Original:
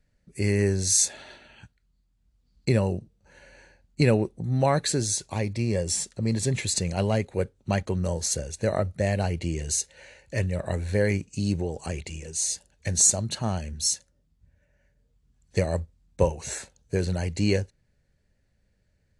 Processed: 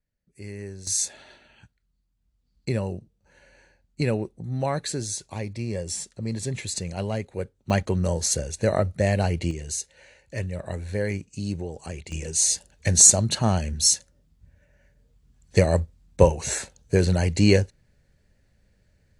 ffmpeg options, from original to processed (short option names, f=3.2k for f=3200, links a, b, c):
-af "asetnsamples=n=441:p=0,asendcmd='0.87 volume volume -4dB;7.7 volume volume 3dB;9.51 volume volume -3.5dB;12.12 volume volume 6dB',volume=-14dB"